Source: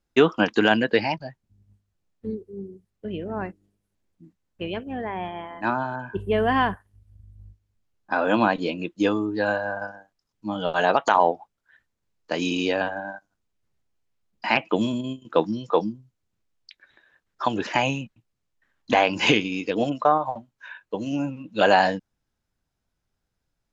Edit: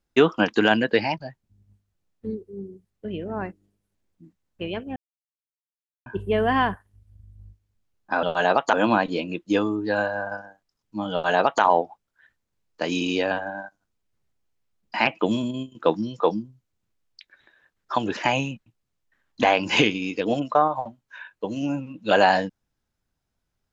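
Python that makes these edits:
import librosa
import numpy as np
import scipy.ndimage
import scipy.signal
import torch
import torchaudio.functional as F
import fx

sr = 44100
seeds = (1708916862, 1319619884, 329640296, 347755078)

y = fx.edit(x, sr, fx.silence(start_s=4.96, length_s=1.1),
    fx.duplicate(start_s=10.62, length_s=0.5, to_s=8.23), tone=tone)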